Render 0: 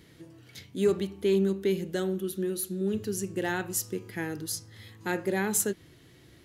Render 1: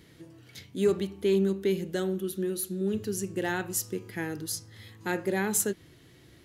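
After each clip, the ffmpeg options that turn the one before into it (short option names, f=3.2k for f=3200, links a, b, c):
-af anull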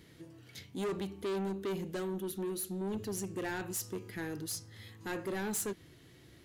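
-af "asoftclip=type=tanh:threshold=-29.5dB,volume=-2.5dB"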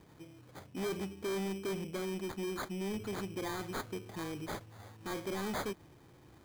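-af "bandreject=f=1.4k:w=18,acrusher=samples=16:mix=1:aa=0.000001,volume=-1dB"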